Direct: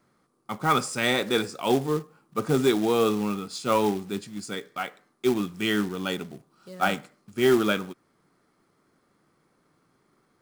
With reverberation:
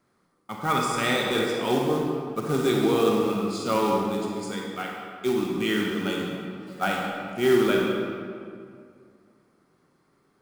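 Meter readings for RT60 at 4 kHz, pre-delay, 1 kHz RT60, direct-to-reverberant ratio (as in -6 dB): 1.4 s, 33 ms, 2.2 s, -1.5 dB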